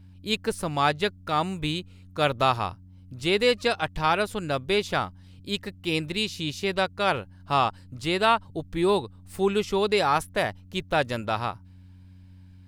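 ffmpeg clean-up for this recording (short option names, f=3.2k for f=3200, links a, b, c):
-af "bandreject=f=92.4:t=h:w=4,bandreject=f=184.8:t=h:w=4,bandreject=f=277.2:t=h:w=4"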